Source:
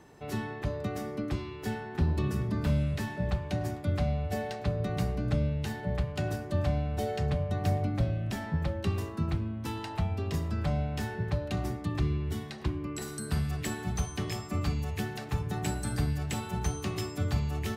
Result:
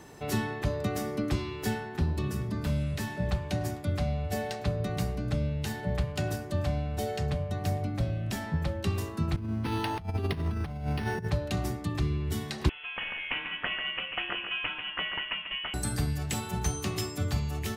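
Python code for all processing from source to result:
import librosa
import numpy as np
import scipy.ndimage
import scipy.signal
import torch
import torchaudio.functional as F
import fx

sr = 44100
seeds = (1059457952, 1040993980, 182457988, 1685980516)

y = fx.chain(x, sr, fx.notch(hz=570.0, q=9.5),
    fx.over_compress(threshold_db=-35.0, ratio=-0.5),
    fx.resample_linear(factor=6), at=(9.36, 11.28))
y = fx.chain(y, sr, fx.cheby1_highpass(hz=770.0, order=3),
    fx.echo_single(ms=142, db=-7.5),
    fx.freq_invert(carrier_hz=3700), at=(12.69, 15.74))
y = fx.high_shelf(y, sr, hz=3800.0, db=6.5)
y = fx.rider(y, sr, range_db=10, speed_s=0.5)
y = y * librosa.db_to_amplitude(1.0)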